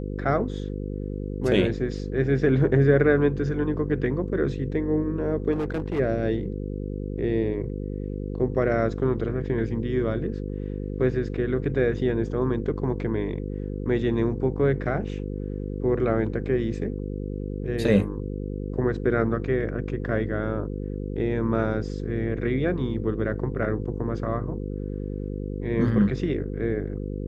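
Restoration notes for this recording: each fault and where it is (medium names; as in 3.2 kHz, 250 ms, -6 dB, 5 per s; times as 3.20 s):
buzz 50 Hz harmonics 10 -31 dBFS
5.52–6.00 s: clipped -23 dBFS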